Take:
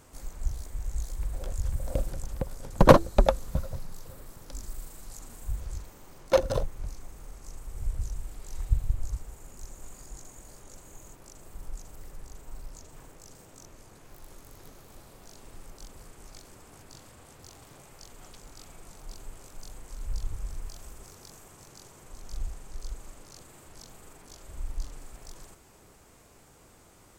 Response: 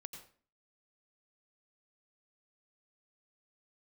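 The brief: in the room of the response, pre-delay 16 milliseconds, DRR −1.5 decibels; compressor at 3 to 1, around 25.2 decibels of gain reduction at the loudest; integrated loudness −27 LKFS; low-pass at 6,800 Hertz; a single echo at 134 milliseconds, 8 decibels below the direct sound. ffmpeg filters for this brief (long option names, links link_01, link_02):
-filter_complex "[0:a]lowpass=6800,acompressor=threshold=-45dB:ratio=3,aecho=1:1:134:0.398,asplit=2[link_01][link_02];[1:a]atrim=start_sample=2205,adelay=16[link_03];[link_02][link_03]afir=irnorm=-1:irlink=0,volume=6dB[link_04];[link_01][link_04]amix=inputs=2:normalize=0,volume=20.5dB"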